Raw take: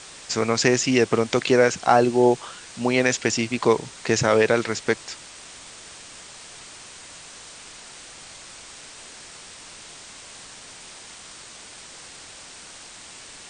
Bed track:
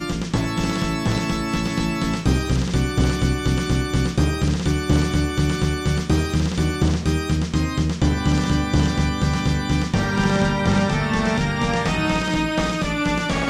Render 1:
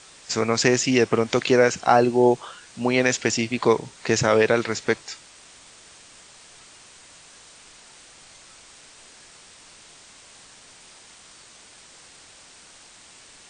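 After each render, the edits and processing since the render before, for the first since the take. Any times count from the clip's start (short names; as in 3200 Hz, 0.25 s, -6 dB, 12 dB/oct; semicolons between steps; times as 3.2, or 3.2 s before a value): noise print and reduce 6 dB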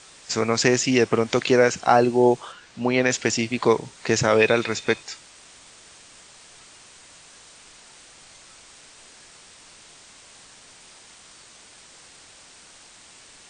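2.52–3.11 air absorption 84 m; 4.38–5.03 small resonant body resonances 2500/3600 Hz, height 15 dB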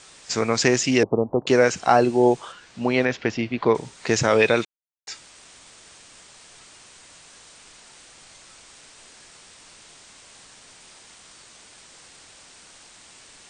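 1.03–1.47 steep low-pass 960 Hz 48 dB/oct; 3.05–3.75 air absorption 250 m; 4.65–5.07 mute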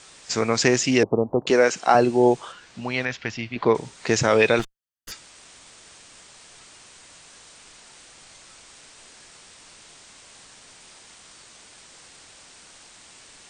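1.5–1.95 HPF 240 Hz; 2.8–3.56 bell 380 Hz -10.5 dB 2.2 oct; 4.59–5.12 minimum comb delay 0.64 ms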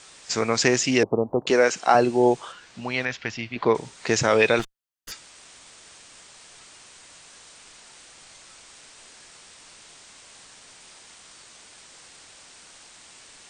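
low shelf 390 Hz -3 dB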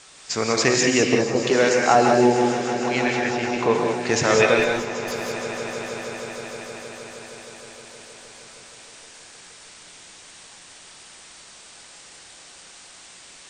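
on a send: swelling echo 0.156 s, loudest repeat 5, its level -16.5 dB; on the sum: non-linear reverb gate 0.22 s rising, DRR 1 dB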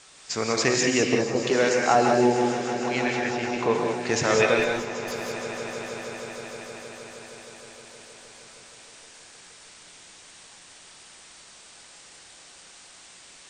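gain -3.5 dB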